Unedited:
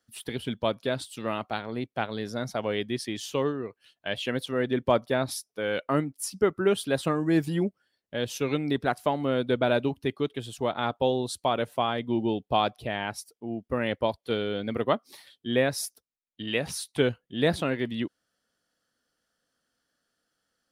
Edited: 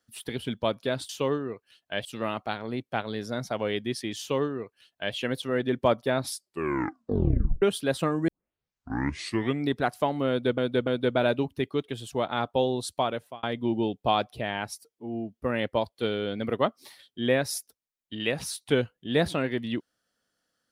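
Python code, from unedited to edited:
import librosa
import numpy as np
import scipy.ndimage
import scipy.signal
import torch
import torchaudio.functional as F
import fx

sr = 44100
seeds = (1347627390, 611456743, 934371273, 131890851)

y = fx.edit(x, sr, fx.duplicate(start_s=3.23, length_s=0.96, to_s=1.09),
    fx.tape_stop(start_s=5.33, length_s=1.33),
    fx.tape_start(start_s=7.32, length_s=1.36),
    fx.repeat(start_s=9.33, length_s=0.29, count=3),
    fx.fade_out_span(start_s=11.45, length_s=0.44),
    fx.stretch_span(start_s=13.31, length_s=0.37, factor=1.5), tone=tone)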